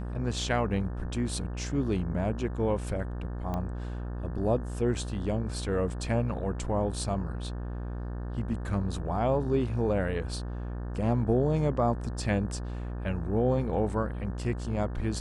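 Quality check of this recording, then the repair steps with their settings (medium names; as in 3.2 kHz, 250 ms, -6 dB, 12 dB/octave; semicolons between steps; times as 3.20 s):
buzz 60 Hz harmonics 30 -35 dBFS
3.54 s: pop -21 dBFS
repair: de-click; de-hum 60 Hz, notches 30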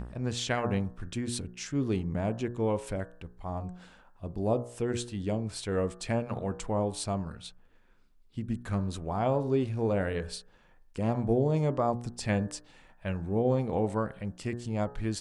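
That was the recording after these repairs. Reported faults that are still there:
nothing left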